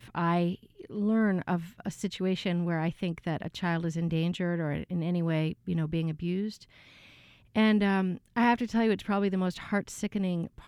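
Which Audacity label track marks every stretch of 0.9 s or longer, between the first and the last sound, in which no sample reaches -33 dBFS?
6.500000	7.560000	silence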